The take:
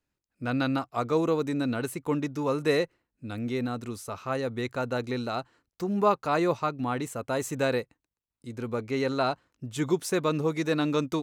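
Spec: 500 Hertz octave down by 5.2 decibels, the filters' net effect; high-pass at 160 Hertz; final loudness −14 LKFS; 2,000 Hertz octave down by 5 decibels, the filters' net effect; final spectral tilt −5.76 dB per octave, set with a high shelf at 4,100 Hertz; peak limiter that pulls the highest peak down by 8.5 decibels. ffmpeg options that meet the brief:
ffmpeg -i in.wav -af "highpass=160,equalizer=frequency=500:width_type=o:gain=-6,equalizer=frequency=2000:width_type=o:gain=-5.5,highshelf=frequency=4100:gain=-4.5,volume=20.5dB,alimiter=limit=-1.5dB:level=0:latency=1" out.wav

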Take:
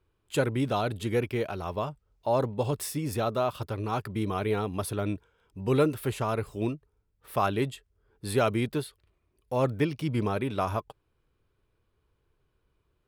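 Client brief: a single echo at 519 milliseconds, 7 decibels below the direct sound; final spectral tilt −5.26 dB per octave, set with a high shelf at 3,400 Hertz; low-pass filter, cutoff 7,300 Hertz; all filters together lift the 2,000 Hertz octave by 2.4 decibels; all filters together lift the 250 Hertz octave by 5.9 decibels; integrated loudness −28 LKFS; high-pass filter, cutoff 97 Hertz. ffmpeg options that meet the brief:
ffmpeg -i in.wav -af "highpass=97,lowpass=7300,equalizer=frequency=250:width_type=o:gain=7.5,equalizer=frequency=2000:width_type=o:gain=6,highshelf=frequency=3400:gain=-8.5,aecho=1:1:519:0.447,volume=-1dB" out.wav

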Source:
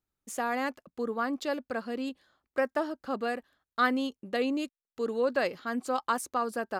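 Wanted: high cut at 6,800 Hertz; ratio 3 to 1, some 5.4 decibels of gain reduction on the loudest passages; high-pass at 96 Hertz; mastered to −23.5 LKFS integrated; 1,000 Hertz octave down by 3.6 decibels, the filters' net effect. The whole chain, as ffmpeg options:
ffmpeg -i in.wav -af "highpass=96,lowpass=6800,equalizer=frequency=1000:width_type=o:gain=-5,acompressor=threshold=-31dB:ratio=3,volume=13dB" out.wav

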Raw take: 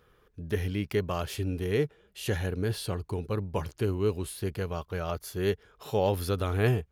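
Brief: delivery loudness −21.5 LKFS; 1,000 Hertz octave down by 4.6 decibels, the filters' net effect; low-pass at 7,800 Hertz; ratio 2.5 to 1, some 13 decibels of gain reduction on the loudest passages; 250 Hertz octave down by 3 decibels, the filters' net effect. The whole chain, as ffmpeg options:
ffmpeg -i in.wav -af "lowpass=7800,equalizer=frequency=250:width_type=o:gain=-4,equalizer=frequency=1000:width_type=o:gain=-6,acompressor=threshold=-43dB:ratio=2.5,volume=21.5dB" out.wav

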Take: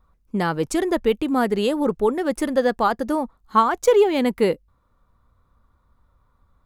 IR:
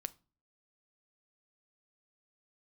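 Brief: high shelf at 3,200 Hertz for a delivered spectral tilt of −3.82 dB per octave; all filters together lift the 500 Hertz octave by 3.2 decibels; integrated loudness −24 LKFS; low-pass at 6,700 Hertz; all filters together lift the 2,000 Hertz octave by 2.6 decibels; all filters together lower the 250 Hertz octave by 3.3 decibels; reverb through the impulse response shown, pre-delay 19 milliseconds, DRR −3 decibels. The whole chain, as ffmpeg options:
-filter_complex "[0:a]lowpass=6700,equalizer=frequency=250:width_type=o:gain=-6.5,equalizer=frequency=500:width_type=o:gain=5.5,equalizer=frequency=2000:width_type=o:gain=5,highshelf=frequency=3200:gain=-6,asplit=2[link_01][link_02];[1:a]atrim=start_sample=2205,adelay=19[link_03];[link_02][link_03]afir=irnorm=-1:irlink=0,volume=5.5dB[link_04];[link_01][link_04]amix=inputs=2:normalize=0,volume=-9.5dB"

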